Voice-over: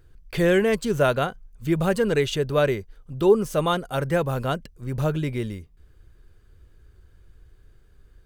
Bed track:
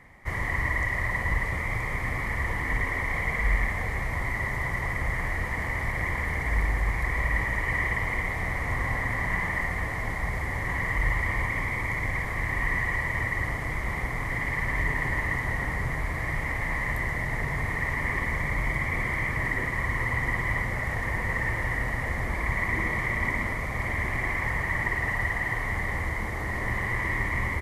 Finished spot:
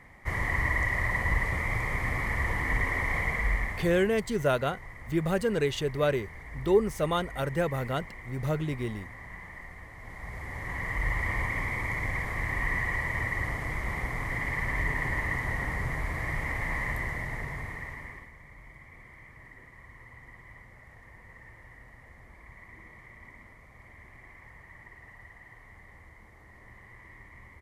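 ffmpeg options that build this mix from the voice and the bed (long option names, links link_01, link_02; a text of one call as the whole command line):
ffmpeg -i stem1.wav -i stem2.wav -filter_complex "[0:a]adelay=3450,volume=-5.5dB[link_01];[1:a]volume=13.5dB,afade=type=out:start_time=3.17:duration=1:silence=0.158489,afade=type=in:start_time=9.97:duration=1.34:silence=0.199526,afade=type=out:start_time=16.8:duration=1.51:silence=0.0944061[link_02];[link_01][link_02]amix=inputs=2:normalize=0" out.wav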